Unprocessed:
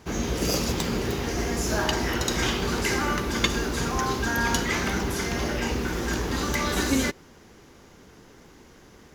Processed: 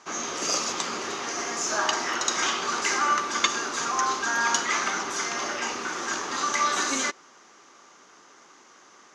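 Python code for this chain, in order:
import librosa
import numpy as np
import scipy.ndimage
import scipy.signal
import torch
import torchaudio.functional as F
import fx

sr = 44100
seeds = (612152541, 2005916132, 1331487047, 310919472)

y = fx.cabinet(x, sr, low_hz=460.0, low_slope=12, high_hz=8100.0, hz=(470.0, 1200.0, 6300.0), db=(-6, 9, 7))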